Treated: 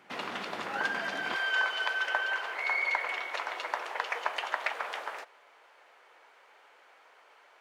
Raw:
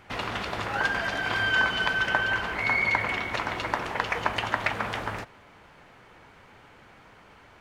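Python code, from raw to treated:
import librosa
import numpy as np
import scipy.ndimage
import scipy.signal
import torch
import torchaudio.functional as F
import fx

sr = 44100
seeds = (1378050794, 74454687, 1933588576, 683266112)

y = fx.highpass(x, sr, hz=fx.steps((0.0, 180.0), (1.36, 460.0)), slope=24)
y = y * librosa.db_to_amplitude(-5.0)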